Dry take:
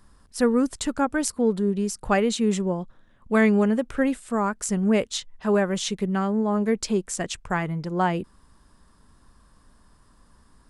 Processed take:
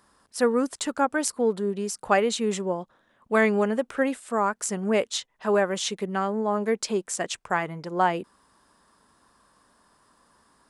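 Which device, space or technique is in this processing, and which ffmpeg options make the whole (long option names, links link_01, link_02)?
filter by subtraction: -filter_complex "[0:a]asplit=2[link_01][link_02];[link_02]lowpass=640,volume=-1[link_03];[link_01][link_03]amix=inputs=2:normalize=0"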